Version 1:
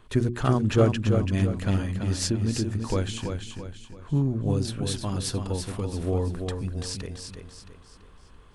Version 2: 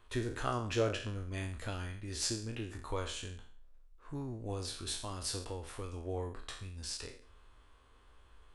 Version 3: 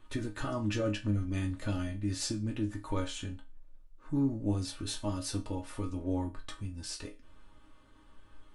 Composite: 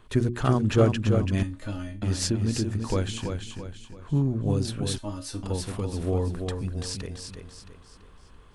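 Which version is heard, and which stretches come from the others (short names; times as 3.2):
1
1.43–2.02 from 3
4.98–5.43 from 3
not used: 2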